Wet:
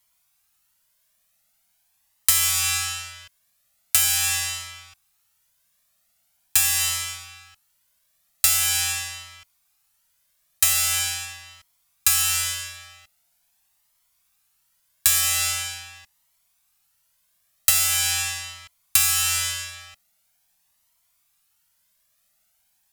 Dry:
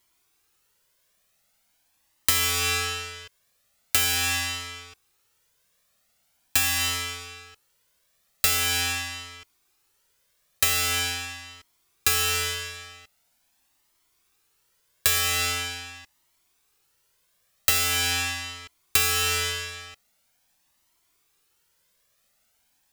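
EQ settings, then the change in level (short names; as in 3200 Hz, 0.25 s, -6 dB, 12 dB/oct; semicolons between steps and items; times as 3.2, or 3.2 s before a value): Chebyshev band-stop 220–610 Hz, order 3; dynamic EQ 7900 Hz, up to +6 dB, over -41 dBFS, Q 0.87; bell 13000 Hz +6 dB 1.1 oct; -2.0 dB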